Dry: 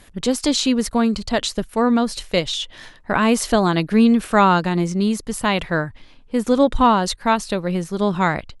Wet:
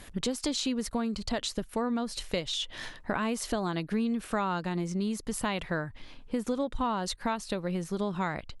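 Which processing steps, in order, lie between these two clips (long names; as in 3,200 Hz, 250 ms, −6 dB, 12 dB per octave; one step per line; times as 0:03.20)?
downward compressor 4 to 1, threshold −30 dBFS, peak gain reduction 17 dB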